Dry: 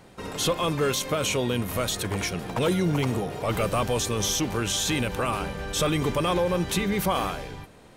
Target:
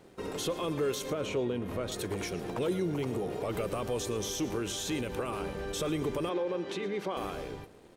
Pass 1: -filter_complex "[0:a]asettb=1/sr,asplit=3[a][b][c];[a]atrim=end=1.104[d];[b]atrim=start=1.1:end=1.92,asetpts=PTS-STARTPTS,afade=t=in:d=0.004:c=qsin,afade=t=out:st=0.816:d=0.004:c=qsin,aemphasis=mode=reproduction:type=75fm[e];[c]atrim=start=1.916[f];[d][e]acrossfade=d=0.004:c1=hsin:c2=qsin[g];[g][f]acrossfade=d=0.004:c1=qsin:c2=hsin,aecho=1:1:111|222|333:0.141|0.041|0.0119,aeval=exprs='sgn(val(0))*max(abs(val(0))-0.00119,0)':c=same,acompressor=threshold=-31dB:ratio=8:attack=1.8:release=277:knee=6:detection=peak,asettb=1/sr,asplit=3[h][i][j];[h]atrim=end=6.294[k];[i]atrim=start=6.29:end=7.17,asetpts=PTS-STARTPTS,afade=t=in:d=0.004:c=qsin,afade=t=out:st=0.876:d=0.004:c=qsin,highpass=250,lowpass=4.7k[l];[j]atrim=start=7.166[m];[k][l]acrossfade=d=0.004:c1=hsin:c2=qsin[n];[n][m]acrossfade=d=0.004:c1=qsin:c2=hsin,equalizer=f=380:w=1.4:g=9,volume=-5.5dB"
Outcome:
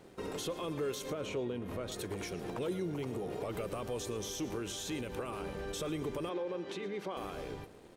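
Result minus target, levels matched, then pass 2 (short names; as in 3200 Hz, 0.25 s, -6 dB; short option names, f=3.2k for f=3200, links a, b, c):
compressor: peak gain reduction +5 dB
-filter_complex "[0:a]asettb=1/sr,asplit=3[a][b][c];[a]atrim=end=1.104[d];[b]atrim=start=1.1:end=1.92,asetpts=PTS-STARTPTS,afade=t=in:d=0.004:c=qsin,afade=t=out:st=0.816:d=0.004:c=qsin,aemphasis=mode=reproduction:type=75fm[e];[c]atrim=start=1.916[f];[d][e]acrossfade=d=0.004:c1=hsin:c2=qsin[g];[g][f]acrossfade=d=0.004:c1=qsin:c2=hsin,aecho=1:1:111|222|333:0.141|0.041|0.0119,aeval=exprs='sgn(val(0))*max(abs(val(0))-0.00119,0)':c=same,acompressor=threshold=-25dB:ratio=8:attack=1.8:release=277:knee=6:detection=peak,asettb=1/sr,asplit=3[h][i][j];[h]atrim=end=6.294[k];[i]atrim=start=6.29:end=7.17,asetpts=PTS-STARTPTS,afade=t=in:d=0.004:c=qsin,afade=t=out:st=0.876:d=0.004:c=qsin,highpass=250,lowpass=4.7k[l];[j]atrim=start=7.166[m];[k][l]acrossfade=d=0.004:c1=hsin:c2=qsin[n];[n][m]acrossfade=d=0.004:c1=qsin:c2=hsin,equalizer=f=380:w=1.4:g=9,volume=-5.5dB"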